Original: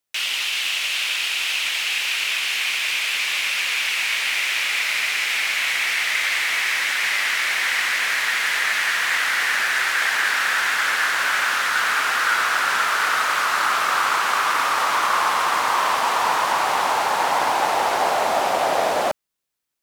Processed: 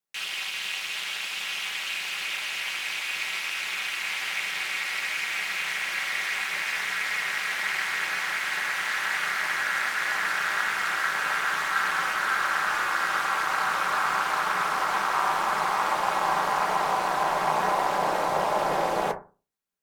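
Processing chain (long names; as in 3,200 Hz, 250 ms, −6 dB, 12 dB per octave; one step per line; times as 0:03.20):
feedback delay network reverb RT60 0.32 s, low-frequency decay 1.25×, high-frequency decay 0.35×, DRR −2.5 dB
ring modulation 120 Hz
level −7.5 dB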